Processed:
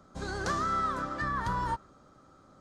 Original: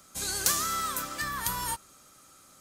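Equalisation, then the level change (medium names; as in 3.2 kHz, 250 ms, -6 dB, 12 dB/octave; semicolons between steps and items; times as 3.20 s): dynamic bell 1.7 kHz, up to +4 dB, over -47 dBFS, Q 1; tape spacing loss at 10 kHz 36 dB; peaking EQ 2.5 kHz -11.5 dB 0.9 oct; +6.5 dB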